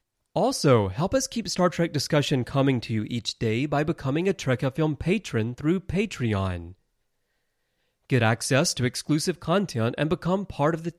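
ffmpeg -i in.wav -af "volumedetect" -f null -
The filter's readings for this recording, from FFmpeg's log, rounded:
mean_volume: -25.4 dB
max_volume: -7.8 dB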